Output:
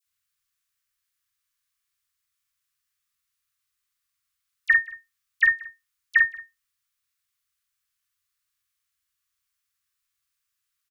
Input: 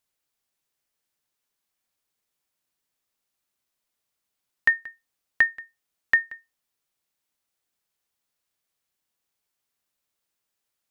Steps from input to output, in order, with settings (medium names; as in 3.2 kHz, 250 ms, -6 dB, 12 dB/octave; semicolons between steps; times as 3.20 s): Chebyshev band-stop 120–1100 Hz, order 5; doubling 47 ms -3 dB; phase dispersion lows, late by 55 ms, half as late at 1.6 kHz